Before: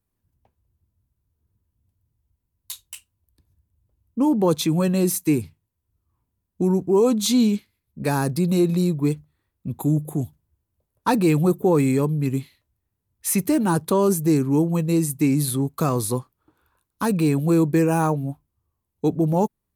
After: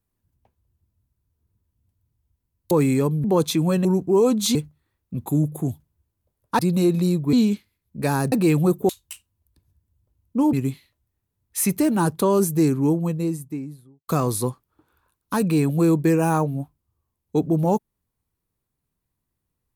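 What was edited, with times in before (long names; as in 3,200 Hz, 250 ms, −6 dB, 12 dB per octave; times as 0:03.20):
0:02.71–0:04.35: swap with 0:11.69–0:12.22
0:04.96–0:06.65: remove
0:07.35–0:08.34: swap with 0:09.08–0:11.12
0:14.34–0:15.77: fade out and dull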